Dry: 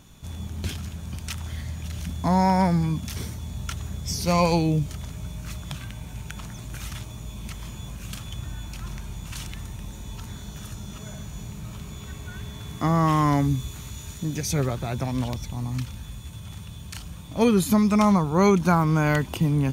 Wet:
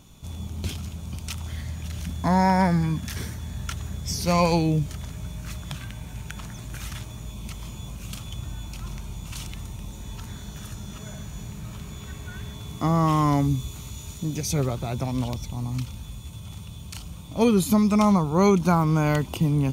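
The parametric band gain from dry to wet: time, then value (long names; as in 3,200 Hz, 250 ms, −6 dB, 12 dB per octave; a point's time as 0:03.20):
parametric band 1,700 Hz 0.41 octaves
−8 dB
from 0:01.48 0 dB
from 0:02.24 +8.5 dB
from 0:03.68 +1.5 dB
from 0:07.31 −7 dB
from 0:10.00 +1 dB
from 0:12.54 −9 dB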